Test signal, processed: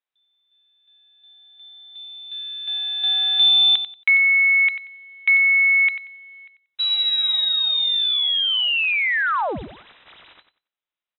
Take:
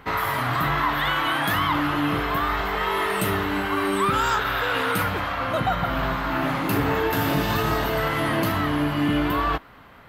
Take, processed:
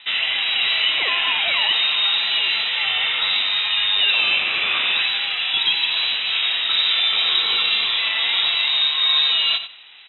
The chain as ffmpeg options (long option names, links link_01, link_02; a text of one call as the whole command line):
ffmpeg -i in.wav -af "acrusher=bits=4:mode=log:mix=0:aa=0.000001,lowpass=frequency=3400:width_type=q:width=0.5098,lowpass=frequency=3400:width_type=q:width=0.6013,lowpass=frequency=3400:width_type=q:width=0.9,lowpass=frequency=3400:width_type=q:width=2.563,afreqshift=-4000,aecho=1:1:92|184|276:0.282|0.0592|0.0124,volume=3dB" out.wav